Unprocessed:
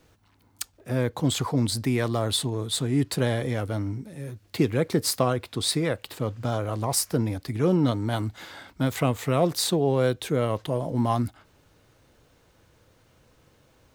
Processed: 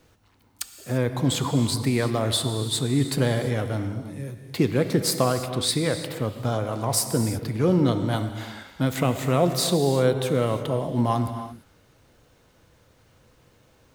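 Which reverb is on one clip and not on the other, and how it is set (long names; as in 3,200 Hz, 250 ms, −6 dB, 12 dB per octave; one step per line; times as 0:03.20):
reverb whose tail is shaped and stops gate 370 ms flat, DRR 7.5 dB
level +1 dB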